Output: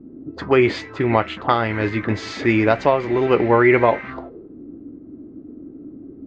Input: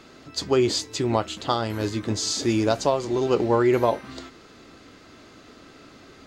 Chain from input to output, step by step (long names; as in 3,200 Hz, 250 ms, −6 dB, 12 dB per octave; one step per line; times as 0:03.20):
envelope-controlled low-pass 240–2,100 Hz up, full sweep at −24.5 dBFS
level +4.5 dB